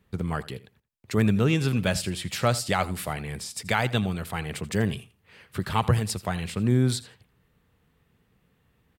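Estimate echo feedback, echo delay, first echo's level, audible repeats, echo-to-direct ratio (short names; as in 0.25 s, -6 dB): 16%, 83 ms, -18.0 dB, 2, -18.0 dB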